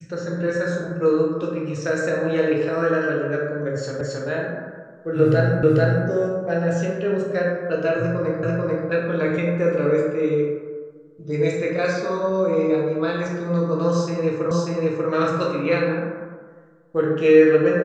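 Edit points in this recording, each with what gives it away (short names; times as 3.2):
4.01 repeat of the last 0.27 s
5.63 repeat of the last 0.44 s
8.43 repeat of the last 0.44 s
14.51 repeat of the last 0.59 s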